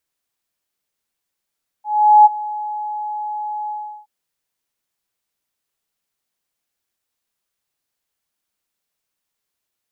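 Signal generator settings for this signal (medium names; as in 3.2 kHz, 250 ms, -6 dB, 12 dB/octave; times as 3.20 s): ADSR sine 844 Hz, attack 414 ms, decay 25 ms, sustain -19 dB, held 1.85 s, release 371 ms -3.5 dBFS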